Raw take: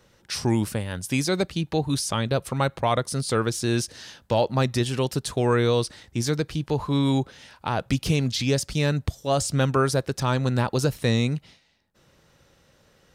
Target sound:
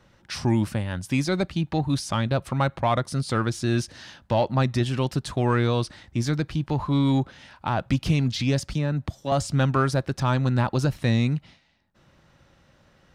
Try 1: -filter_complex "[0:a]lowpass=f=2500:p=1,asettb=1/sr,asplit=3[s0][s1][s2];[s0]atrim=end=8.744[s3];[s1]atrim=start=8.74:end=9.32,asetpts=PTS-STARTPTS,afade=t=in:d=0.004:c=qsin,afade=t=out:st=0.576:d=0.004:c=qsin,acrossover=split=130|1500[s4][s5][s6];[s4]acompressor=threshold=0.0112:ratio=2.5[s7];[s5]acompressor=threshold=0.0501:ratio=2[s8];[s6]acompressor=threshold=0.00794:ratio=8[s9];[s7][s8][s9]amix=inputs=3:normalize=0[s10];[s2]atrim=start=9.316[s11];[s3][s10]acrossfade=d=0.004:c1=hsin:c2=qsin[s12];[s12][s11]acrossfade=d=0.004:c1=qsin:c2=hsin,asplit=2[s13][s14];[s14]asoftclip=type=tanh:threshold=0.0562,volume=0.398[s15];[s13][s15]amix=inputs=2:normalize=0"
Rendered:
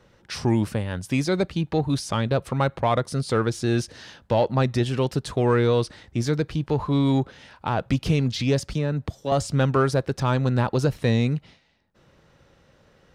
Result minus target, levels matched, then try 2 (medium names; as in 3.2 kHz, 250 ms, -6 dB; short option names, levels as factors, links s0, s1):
500 Hz band +3.0 dB
-filter_complex "[0:a]lowpass=f=2500:p=1,equalizer=f=450:t=o:w=0.39:g=-9,asettb=1/sr,asplit=3[s0][s1][s2];[s0]atrim=end=8.744[s3];[s1]atrim=start=8.74:end=9.32,asetpts=PTS-STARTPTS,afade=t=in:d=0.004:c=qsin,afade=t=out:st=0.576:d=0.004:c=qsin,acrossover=split=130|1500[s4][s5][s6];[s4]acompressor=threshold=0.0112:ratio=2.5[s7];[s5]acompressor=threshold=0.0501:ratio=2[s8];[s6]acompressor=threshold=0.00794:ratio=8[s9];[s7][s8][s9]amix=inputs=3:normalize=0[s10];[s2]atrim=start=9.316[s11];[s3][s10]acrossfade=d=0.004:c1=hsin:c2=qsin[s12];[s12][s11]acrossfade=d=0.004:c1=qsin:c2=hsin,asplit=2[s13][s14];[s14]asoftclip=type=tanh:threshold=0.0562,volume=0.398[s15];[s13][s15]amix=inputs=2:normalize=0"